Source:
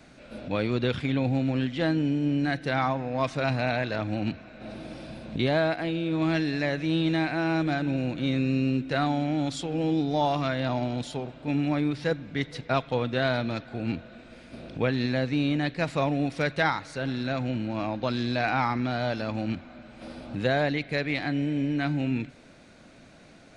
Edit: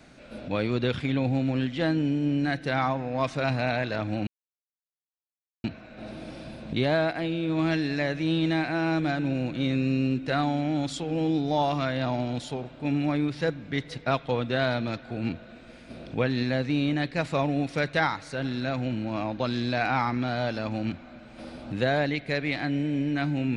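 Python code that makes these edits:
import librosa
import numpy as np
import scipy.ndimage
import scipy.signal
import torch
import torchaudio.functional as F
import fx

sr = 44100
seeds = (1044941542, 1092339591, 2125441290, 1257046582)

y = fx.edit(x, sr, fx.insert_silence(at_s=4.27, length_s=1.37), tone=tone)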